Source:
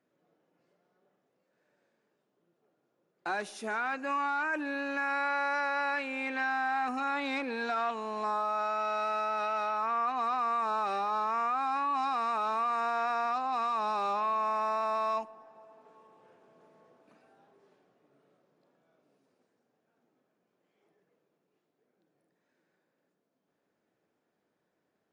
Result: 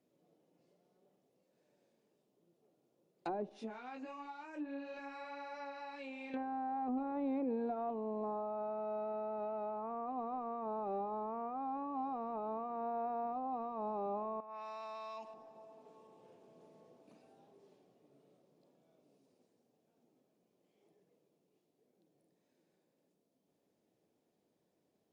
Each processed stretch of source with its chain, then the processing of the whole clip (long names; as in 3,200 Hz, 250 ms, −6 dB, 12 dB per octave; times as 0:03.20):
0:03.49–0:06.34: downward compressor 3 to 1, threshold −38 dBFS + micro pitch shift up and down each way 20 cents
0:14.40–0:15.34: tilt shelving filter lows −7 dB, about 660 Hz + downward compressor, threshold −39 dBFS
whole clip: parametric band 1,500 Hz −14.5 dB 1.2 octaves; treble cut that deepens with the level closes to 690 Hz, closed at −37 dBFS; level +2 dB